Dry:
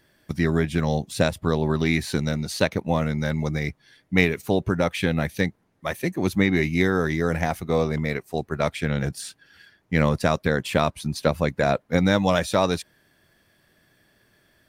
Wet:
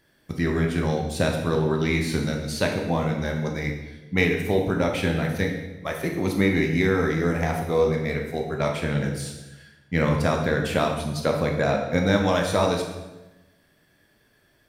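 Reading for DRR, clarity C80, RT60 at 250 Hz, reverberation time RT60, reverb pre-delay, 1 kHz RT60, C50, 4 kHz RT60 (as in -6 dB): 1.5 dB, 7.5 dB, 1.3 s, 1.1 s, 14 ms, 1.0 s, 5.0 dB, 0.90 s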